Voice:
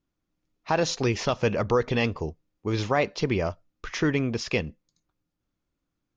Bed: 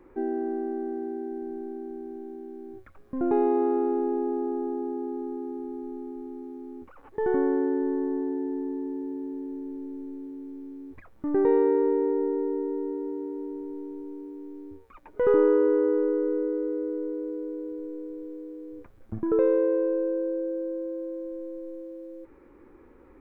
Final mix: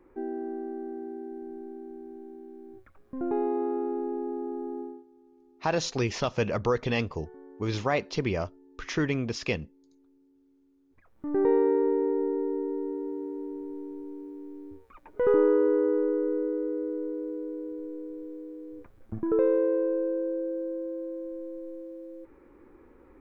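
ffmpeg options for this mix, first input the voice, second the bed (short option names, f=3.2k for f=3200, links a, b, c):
-filter_complex "[0:a]adelay=4950,volume=-3dB[a];[1:a]volume=18.5dB,afade=t=out:st=4.8:d=0.24:silence=0.1,afade=t=in:st=10.89:d=0.55:silence=0.0668344[b];[a][b]amix=inputs=2:normalize=0"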